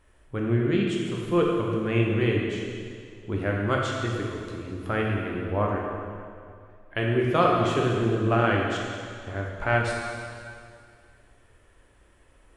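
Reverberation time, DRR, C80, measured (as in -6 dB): 2.2 s, -2.0 dB, 1.5 dB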